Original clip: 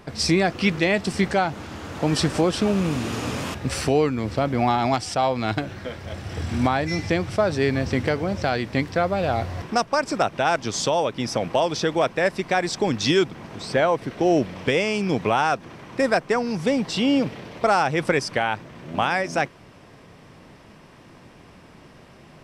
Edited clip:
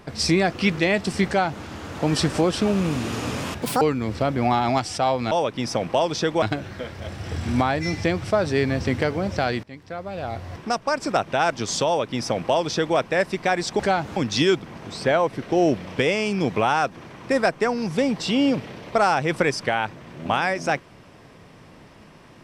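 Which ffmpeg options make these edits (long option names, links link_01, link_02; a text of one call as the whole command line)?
ffmpeg -i in.wav -filter_complex "[0:a]asplit=8[link_01][link_02][link_03][link_04][link_05][link_06][link_07][link_08];[link_01]atrim=end=3.624[link_09];[link_02]atrim=start=3.62:end=3.98,asetpts=PTS-STARTPTS,asetrate=82026,aresample=44100,atrim=end_sample=8535,asetpts=PTS-STARTPTS[link_10];[link_03]atrim=start=3.976:end=5.482[link_11];[link_04]atrim=start=10.918:end=12.032[link_12];[link_05]atrim=start=5.478:end=8.69,asetpts=PTS-STARTPTS,afade=type=out:start_time=3.208:duration=0.004:curve=hsin:silence=0.0749894[link_13];[link_06]atrim=start=8.69:end=12.852,asetpts=PTS-STARTPTS,afade=type=in:duration=1.54:silence=0.0749894[link_14];[link_07]atrim=start=1.268:end=1.642[link_15];[link_08]atrim=start=12.848[link_16];[link_09][link_10]acrossfade=duration=0.004:curve1=hsin:curve2=hsin[link_17];[link_17][link_11]acrossfade=duration=0.004:curve1=hsin:curve2=hsin[link_18];[link_18][link_12]acrossfade=duration=0.004:curve1=hsin:curve2=hsin[link_19];[link_13][link_14]concat=n=2:v=0:a=1[link_20];[link_19][link_20]acrossfade=duration=0.004:curve1=hsin:curve2=hsin[link_21];[link_21][link_15]acrossfade=duration=0.004:curve1=hsin:curve2=hsin[link_22];[link_22][link_16]acrossfade=duration=0.004:curve1=hsin:curve2=hsin" out.wav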